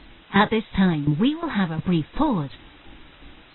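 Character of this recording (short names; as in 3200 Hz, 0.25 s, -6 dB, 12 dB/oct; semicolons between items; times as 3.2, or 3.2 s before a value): tremolo saw down 2.8 Hz, depth 85%; a quantiser's noise floor 8-bit, dither triangular; AAC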